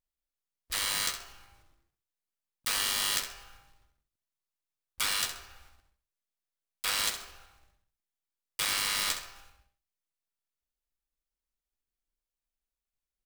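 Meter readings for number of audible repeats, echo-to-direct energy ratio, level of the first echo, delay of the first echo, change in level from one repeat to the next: 2, -9.5 dB, -10.0 dB, 65 ms, -11.5 dB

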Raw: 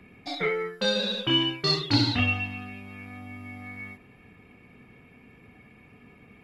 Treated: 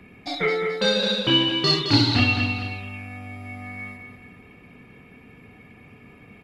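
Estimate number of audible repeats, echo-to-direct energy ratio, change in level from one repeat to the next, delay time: 3, -6.5 dB, -7.0 dB, 0.216 s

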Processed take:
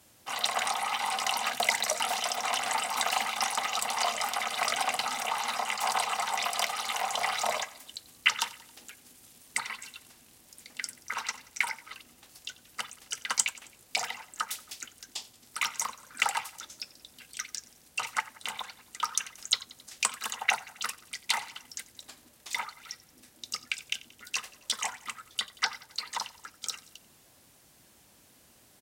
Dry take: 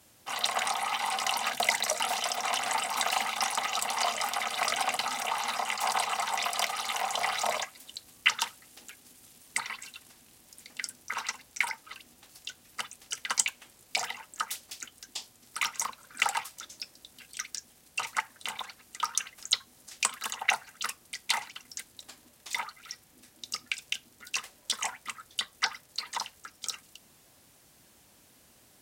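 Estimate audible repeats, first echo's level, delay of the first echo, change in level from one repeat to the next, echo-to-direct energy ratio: 3, -20.0 dB, 90 ms, -5.0 dB, -18.5 dB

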